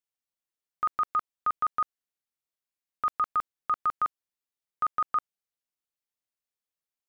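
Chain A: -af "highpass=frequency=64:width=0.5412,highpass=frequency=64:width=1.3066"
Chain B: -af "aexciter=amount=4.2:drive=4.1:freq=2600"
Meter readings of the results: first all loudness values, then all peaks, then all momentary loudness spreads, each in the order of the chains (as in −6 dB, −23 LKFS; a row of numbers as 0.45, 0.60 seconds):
−30.0, −30.5 LKFS; −20.0, −18.0 dBFS; 5, 5 LU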